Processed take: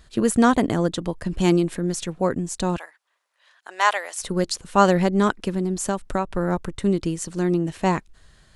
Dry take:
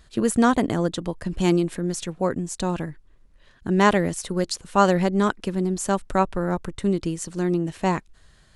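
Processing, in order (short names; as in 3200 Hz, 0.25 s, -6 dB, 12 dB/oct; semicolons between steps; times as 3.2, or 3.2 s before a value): 2.77–4.19 HPF 710 Hz 24 dB/oct; 5.53–6.31 compressor 6:1, threshold -21 dBFS, peak gain reduction 7.5 dB; gain +1.5 dB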